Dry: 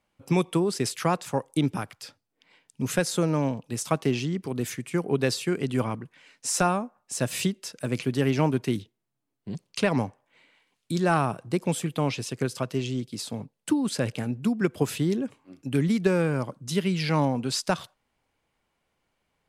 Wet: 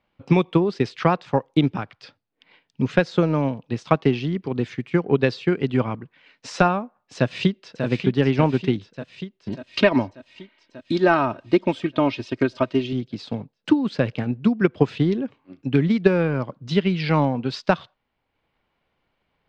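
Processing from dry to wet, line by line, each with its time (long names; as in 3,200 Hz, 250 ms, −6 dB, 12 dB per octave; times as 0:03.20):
0:07.16–0:07.85: delay throw 590 ms, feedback 70%, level −7 dB
0:09.49–0:12.93: comb filter 3.2 ms
whole clip: low-pass filter 4,200 Hz 24 dB per octave; transient designer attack +4 dB, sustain −4 dB; level +3.5 dB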